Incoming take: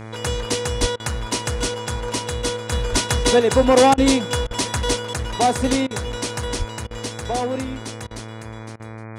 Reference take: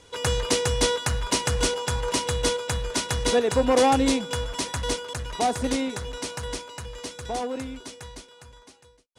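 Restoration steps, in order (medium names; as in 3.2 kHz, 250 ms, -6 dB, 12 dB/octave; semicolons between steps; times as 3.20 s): de-hum 110.8 Hz, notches 22; 0.80–0.92 s: high-pass 140 Hz 24 dB/octave; 2.91–3.03 s: high-pass 140 Hz 24 dB/octave; 6.58–6.70 s: high-pass 140 Hz 24 dB/octave; interpolate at 0.96/3.94/4.47/5.87/6.87/8.07/8.76 s, 37 ms; trim 0 dB, from 2.72 s -6 dB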